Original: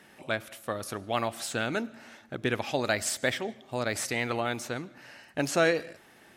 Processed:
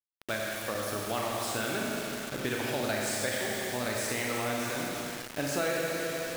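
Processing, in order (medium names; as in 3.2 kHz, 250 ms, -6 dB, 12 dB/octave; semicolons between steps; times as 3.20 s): Schroeder reverb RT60 2.4 s, combs from 29 ms, DRR -2.5 dB; compression 2.5:1, threshold -28 dBFS, peak gain reduction 7.5 dB; bit crusher 6-bit; trim -2 dB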